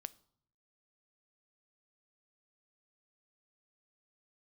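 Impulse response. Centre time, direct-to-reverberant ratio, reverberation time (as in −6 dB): 2 ms, 16.5 dB, 0.65 s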